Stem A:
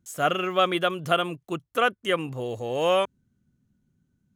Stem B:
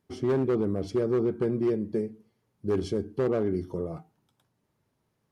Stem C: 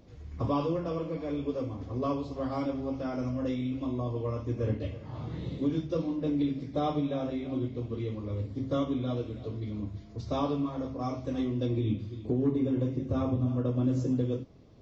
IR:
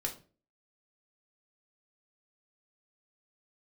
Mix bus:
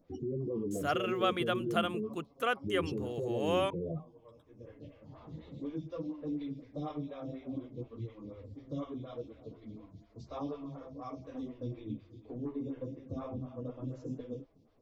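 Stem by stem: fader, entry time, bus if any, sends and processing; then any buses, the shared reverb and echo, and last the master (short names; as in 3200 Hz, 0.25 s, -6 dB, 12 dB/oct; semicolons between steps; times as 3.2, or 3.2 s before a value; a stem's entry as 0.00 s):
-9.0 dB, 0.65 s, no bus, no send, dry
+2.5 dB, 0.00 s, bus A, no send, spectral gate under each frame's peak -15 dB strong
-4.0 dB, 0.00 s, bus A, no send, notch 370 Hz, Q 12; photocell phaser 4.1 Hz; auto duck -13 dB, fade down 0.45 s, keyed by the second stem
bus A: 0.0 dB, chorus voices 6, 1.1 Hz, delay 10 ms, depth 4.1 ms; limiter -29 dBFS, peak gain reduction 14 dB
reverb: off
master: dry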